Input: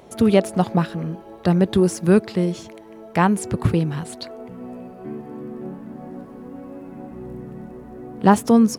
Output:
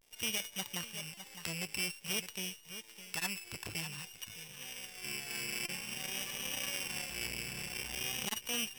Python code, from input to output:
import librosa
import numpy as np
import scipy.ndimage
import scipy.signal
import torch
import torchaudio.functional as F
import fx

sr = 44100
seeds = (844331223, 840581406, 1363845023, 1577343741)

y = np.r_[np.sort(x[:len(x) // 16 * 16].reshape(-1, 16), axis=1).ravel(), x[len(x) // 16 * 16:]]
y = fx.recorder_agc(y, sr, target_db=-10.5, rise_db_per_s=8.3, max_gain_db=30)
y = fx.tone_stack(y, sr, knobs='10-0-10')
y = fx.notch_comb(y, sr, f0_hz=660.0)
y = fx.clip_asym(y, sr, top_db=-23.0, bottom_db=-10.0)
y = fx.peak_eq(y, sr, hz=89.0, db=-5.0, octaves=0.84)
y = np.sign(y) * np.maximum(np.abs(y) - 10.0 ** (-51.0 / 20.0), 0.0)
y = fx.vibrato(y, sr, rate_hz=0.51, depth_cents=86.0)
y = y + 10.0 ** (-12.5 / 20.0) * np.pad(y, (int(610 * sr / 1000.0), 0))[:len(y)]
y = fx.buffer_glitch(y, sr, at_s=(1.14, 5.65), block=128, repeats=10)
y = fx.transformer_sat(y, sr, knee_hz=3900.0)
y = F.gain(torch.from_numpy(y), -4.0).numpy()